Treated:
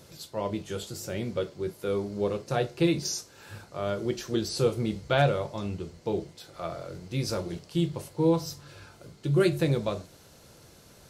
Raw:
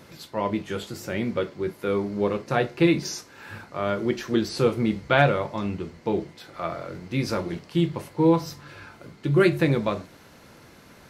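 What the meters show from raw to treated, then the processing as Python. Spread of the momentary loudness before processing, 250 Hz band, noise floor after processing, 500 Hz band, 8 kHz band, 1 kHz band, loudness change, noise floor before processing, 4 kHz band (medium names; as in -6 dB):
16 LU, -5.5 dB, -55 dBFS, -3.5 dB, +2.0 dB, -6.0 dB, -4.5 dB, -51 dBFS, -1.5 dB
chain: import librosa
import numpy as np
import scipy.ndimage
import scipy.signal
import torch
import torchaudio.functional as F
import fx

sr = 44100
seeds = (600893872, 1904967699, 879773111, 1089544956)

y = fx.graphic_eq(x, sr, hz=(250, 1000, 2000, 8000), db=(-8, -6, -9, 4))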